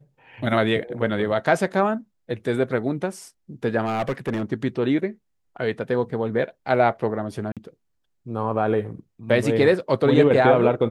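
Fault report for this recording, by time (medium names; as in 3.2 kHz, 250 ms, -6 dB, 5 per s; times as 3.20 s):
3.85–4.43 s: clipped -19.5 dBFS
7.52–7.57 s: dropout 47 ms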